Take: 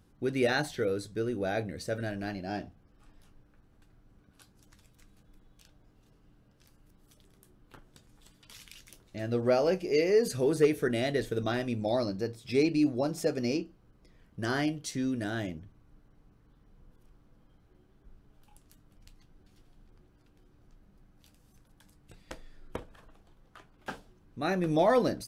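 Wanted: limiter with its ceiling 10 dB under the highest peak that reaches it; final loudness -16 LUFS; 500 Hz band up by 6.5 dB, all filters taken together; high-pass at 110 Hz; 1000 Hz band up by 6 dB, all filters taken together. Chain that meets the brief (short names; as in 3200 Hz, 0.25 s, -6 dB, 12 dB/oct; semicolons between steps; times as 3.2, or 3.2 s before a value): HPF 110 Hz; bell 500 Hz +6.5 dB; bell 1000 Hz +5.5 dB; gain +12.5 dB; limiter -4.5 dBFS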